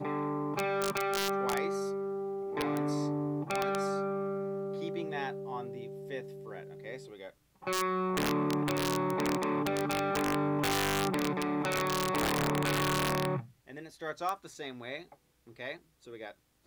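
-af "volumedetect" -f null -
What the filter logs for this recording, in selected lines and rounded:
mean_volume: -33.2 dB
max_volume: -21.9 dB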